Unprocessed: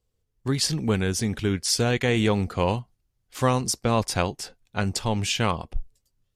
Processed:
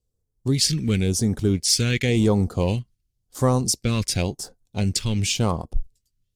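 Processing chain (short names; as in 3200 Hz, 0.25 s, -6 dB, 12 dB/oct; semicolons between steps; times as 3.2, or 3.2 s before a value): sample leveller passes 1; dynamic EQ 2200 Hz, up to +6 dB, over -44 dBFS, Q 4.5; phaser stages 2, 0.94 Hz, lowest notch 750–2500 Hz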